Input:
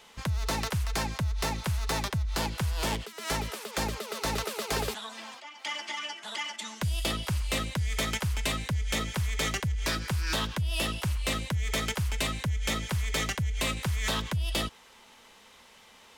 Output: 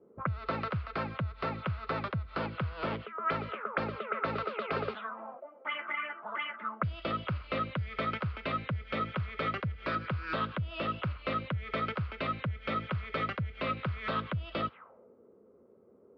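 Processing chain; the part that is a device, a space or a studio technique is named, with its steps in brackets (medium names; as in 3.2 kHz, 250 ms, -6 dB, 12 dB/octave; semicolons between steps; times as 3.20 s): envelope filter bass rig (touch-sensitive low-pass 320–4600 Hz up, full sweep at -29 dBFS; cabinet simulation 84–2200 Hz, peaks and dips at 550 Hz +5 dB, 870 Hz -7 dB, 1.3 kHz +9 dB, 1.8 kHz -6 dB); trim -2.5 dB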